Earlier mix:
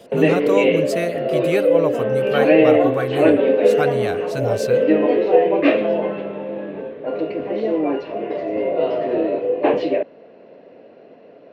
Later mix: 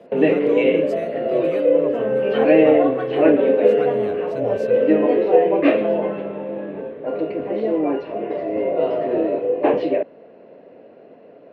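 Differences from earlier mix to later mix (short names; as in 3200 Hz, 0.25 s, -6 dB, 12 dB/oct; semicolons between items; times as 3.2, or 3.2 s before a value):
speech -10.0 dB; master: add high shelf 3900 Hz -11.5 dB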